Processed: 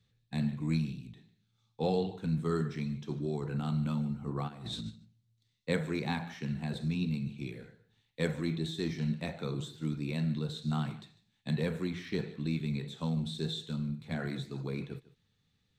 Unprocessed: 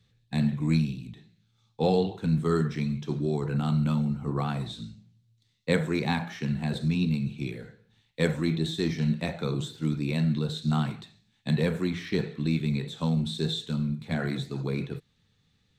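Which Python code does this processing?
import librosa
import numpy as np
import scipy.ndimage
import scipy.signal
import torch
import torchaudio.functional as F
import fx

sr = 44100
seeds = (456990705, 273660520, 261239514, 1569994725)

y = fx.over_compress(x, sr, threshold_db=-40.0, ratio=-1.0, at=(4.47, 4.89), fade=0.02)
y = y + 10.0 ** (-19.0 / 20.0) * np.pad(y, (int(150 * sr / 1000.0), 0))[:len(y)]
y = y * 10.0 ** (-6.5 / 20.0)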